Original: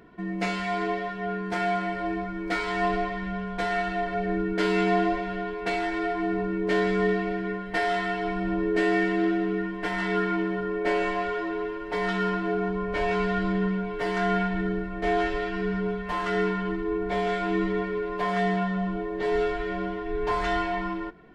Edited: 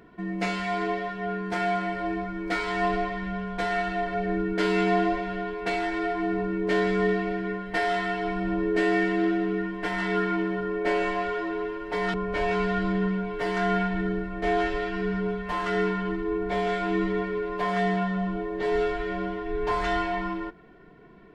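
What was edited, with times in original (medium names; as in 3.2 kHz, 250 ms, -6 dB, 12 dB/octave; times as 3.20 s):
12.14–12.74 s: delete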